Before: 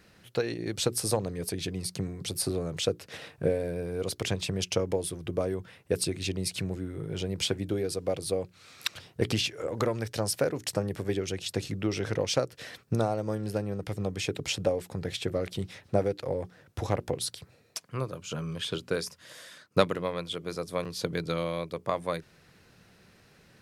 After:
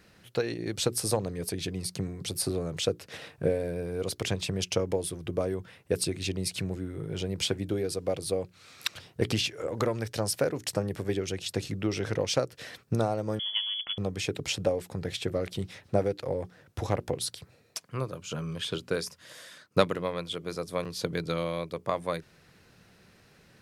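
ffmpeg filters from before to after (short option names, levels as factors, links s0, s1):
-filter_complex "[0:a]asettb=1/sr,asplit=3[s0][s1][s2];[s0]atrim=end=13.394[s3];[s1]atrim=start=13.39:end=13.98,asetpts=PTS-STARTPTS,afade=t=in:d=0.004:c=qsin,afade=t=out:st=0.586:d=0.004:c=qsin,lowpass=f=3000:t=q:w=0.5098,lowpass=f=3000:t=q:w=0.6013,lowpass=f=3000:t=q:w=0.9,lowpass=f=3000:t=q:w=2.563,afreqshift=-3500[s4];[s2]atrim=start=13.976[s5];[s3][s4]acrossfade=d=0.004:c1=hsin:c2=qsin[s6];[s6][s5]acrossfade=d=0.004:c1=qsin:c2=hsin"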